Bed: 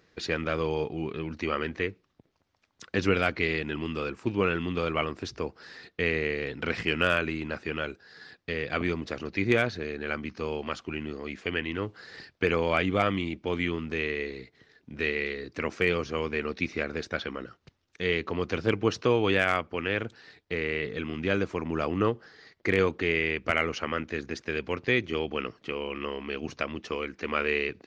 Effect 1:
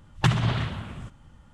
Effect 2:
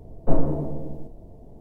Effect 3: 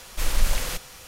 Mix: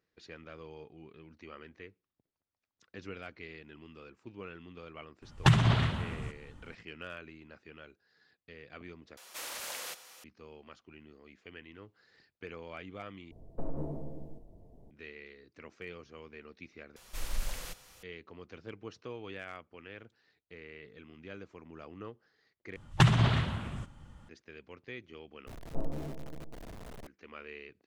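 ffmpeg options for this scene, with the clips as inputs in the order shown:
-filter_complex "[1:a]asplit=2[a][b];[3:a]asplit=2[c][d];[2:a]asplit=2[e][f];[0:a]volume=-19.5dB[g];[c]highpass=450[h];[e]acompressor=threshold=-16dB:ratio=6:attack=3.2:release=140:knee=1:detection=peak[i];[f]aeval=exprs='val(0)+0.5*0.0562*sgn(val(0))':c=same[j];[g]asplit=6[k][l][m][n][o][p];[k]atrim=end=9.174[q];[h]atrim=end=1.07,asetpts=PTS-STARTPTS,volume=-9dB[r];[l]atrim=start=10.236:end=13.314[s];[i]atrim=end=1.6,asetpts=PTS-STARTPTS,volume=-11dB[t];[m]atrim=start=14.906:end=16.964[u];[d]atrim=end=1.07,asetpts=PTS-STARTPTS,volume=-13dB[v];[n]atrim=start=18.026:end=22.764[w];[b]atrim=end=1.53,asetpts=PTS-STARTPTS,volume=-1dB[x];[o]atrim=start=24.286:end=25.474[y];[j]atrim=end=1.6,asetpts=PTS-STARTPTS,volume=-16dB[z];[p]atrim=start=27.066[aa];[a]atrim=end=1.53,asetpts=PTS-STARTPTS,volume=-1dB,afade=t=in:d=0.004:c=hsin,afade=t=out:st=1.526:d=0.004:c=hsin,adelay=5220[ab];[q][r]acrossfade=d=0.004:c1=hsin:c2=hsin[ac];[ac][s]acrossfade=d=0.004:c1=hsin:c2=hsin[ad];[ad][t]acrossfade=d=0.004:c1=hsin:c2=hsin[ae];[ae][u]acrossfade=d=0.004:c1=hsin:c2=hsin[af];[af][v]acrossfade=d=0.004:c1=hsin:c2=hsin[ag];[ag][w]acrossfade=d=0.004:c1=hsin:c2=hsin[ah];[ah][x]acrossfade=d=0.004:c1=hsin:c2=hsin[ai];[ai][y]acrossfade=d=0.004:c1=hsin:c2=hsin[aj];[aj][z]acrossfade=d=0.004:c1=hsin:c2=hsin[ak];[ak][aa]acrossfade=d=0.004:c1=hsin:c2=hsin[al];[al][ab]amix=inputs=2:normalize=0"

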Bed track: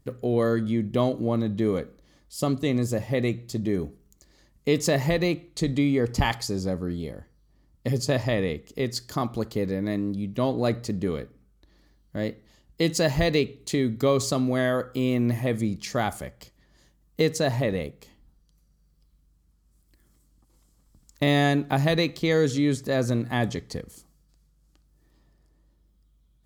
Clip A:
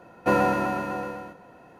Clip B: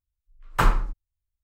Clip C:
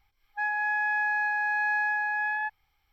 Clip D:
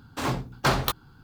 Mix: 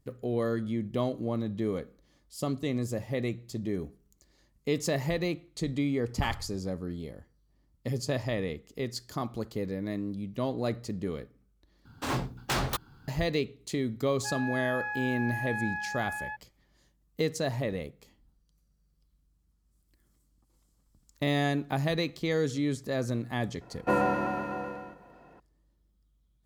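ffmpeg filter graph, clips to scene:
-filter_complex "[0:a]volume=-6.5dB[a];[2:a]aeval=exprs='val(0)*sin(2*PI*48*n/s)':c=same[b];[4:a]aeval=exprs='0.1*(abs(mod(val(0)/0.1+3,4)-2)-1)':c=same[c];[1:a]aemphasis=mode=reproduction:type=cd[d];[a]asplit=2[e][f];[e]atrim=end=11.854[g];[c]atrim=end=1.23,asetpts=PTS-STARTPTS,volume=-2.5dB[h];[f]atrim=start=13.076[i];[b]atrim=end=1.43,asetpts=PTS-STARTPTS,volume=-18dB,afade=t=in:d=0.004:c=hsin,afade=t=out:st=1.426:d=0.004:c=hsin,adelay=5640[j];[3:a]atrim=end=2.92,asetpts=PTS-STARTPTS,volume=-8dB,afade=t=in:d=0.004:c=hsin,afade=t=out:st=2.916:d=0.004:c=hsin,adelay=13870[k];[d]atrim=end=1.79,asetpts=PTS-STARTPTS,volume=-4.5dB,afade=t=in:d=0.004:c=hsin,afade=t=out:st=1.786:d=0.004:c=hsin,adelay=23610[l];[g][h]acrossfade=d=0.004:c1=hsin:c2=hsin[m];[m][i]acrossfade=d=0.004:c1=hsin:c2=hsin[n];[n][j][k][l]amix=inputs=4:normalize=0"

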